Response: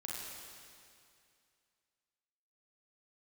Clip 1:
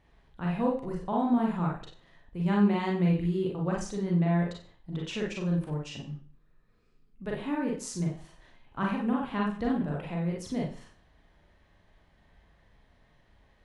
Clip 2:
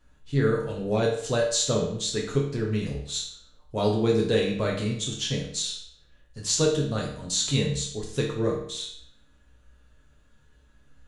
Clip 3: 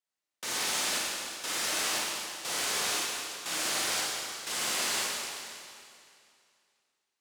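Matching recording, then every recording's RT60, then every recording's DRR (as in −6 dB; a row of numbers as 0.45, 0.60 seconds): 3; 0.45, 0.65, 2.4 seconds; −2.5, −2.0, −4.5 decibels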